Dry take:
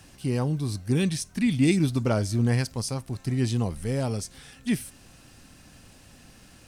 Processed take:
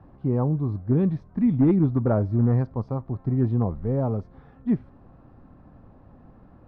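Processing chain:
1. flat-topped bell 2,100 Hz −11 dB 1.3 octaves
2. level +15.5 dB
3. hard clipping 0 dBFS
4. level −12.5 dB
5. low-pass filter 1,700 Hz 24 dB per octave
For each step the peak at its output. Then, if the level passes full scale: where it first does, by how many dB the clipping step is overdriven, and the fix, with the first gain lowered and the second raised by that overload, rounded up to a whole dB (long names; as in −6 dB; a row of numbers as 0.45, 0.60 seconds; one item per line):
−11.0, +4.5, 0.0, −12.5, −12.0 dBFS
step 2, 4.5 dB
step 2 +10.5 dB, step 4 −7.5 dB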